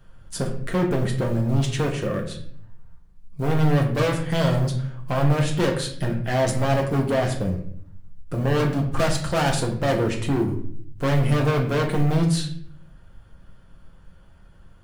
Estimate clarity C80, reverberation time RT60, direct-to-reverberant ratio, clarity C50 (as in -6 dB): 11.0 dB, 0.60 s, 0.5 dB, 8.0 dB